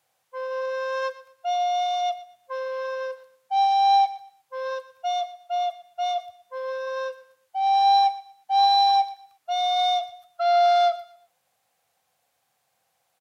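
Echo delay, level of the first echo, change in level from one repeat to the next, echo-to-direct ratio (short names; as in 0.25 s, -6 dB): 0.119 s, -17.0 dB, -11.0 dB, -16.5 dB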